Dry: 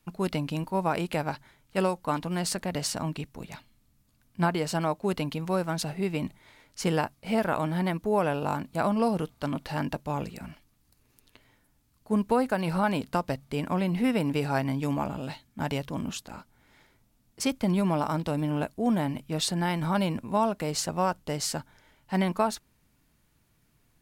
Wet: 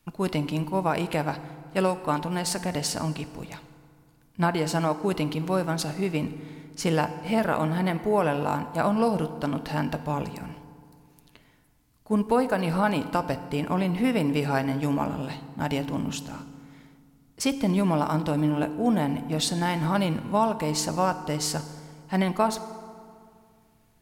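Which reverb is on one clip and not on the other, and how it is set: FDN reverb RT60 2.2 s, low-frequency decay 1.2×, high-frequency decay 0.6×, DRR 11 dB; trim +2 dB

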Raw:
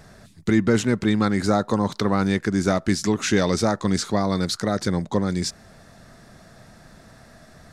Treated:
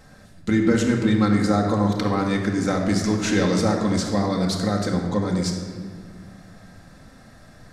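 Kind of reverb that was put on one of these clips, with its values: simulated room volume 2400 m³, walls mixed, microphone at 2.1 m; trim -3.5 dB

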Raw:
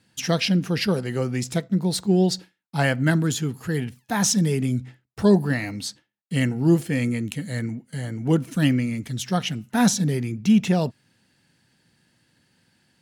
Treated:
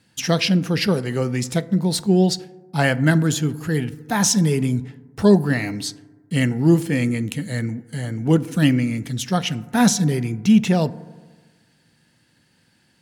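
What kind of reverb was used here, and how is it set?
FDN reverb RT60 1.4 s, low-frequency decay 1.05×, high-frequency decay 0.3×, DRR 16.5 dB; trim +3 dB

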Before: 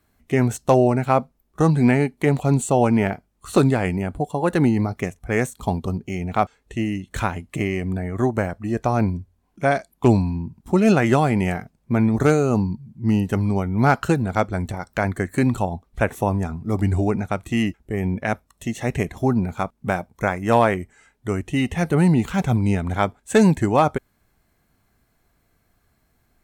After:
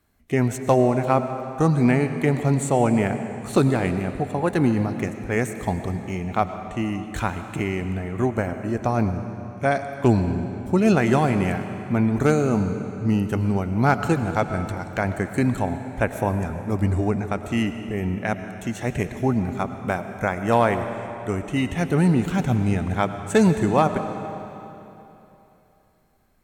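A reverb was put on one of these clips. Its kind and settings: algorithmic reverb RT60 3.1 s, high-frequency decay 0.9×, pre-delay 65 ms, DRR 8.5 dB; trim -2 dB

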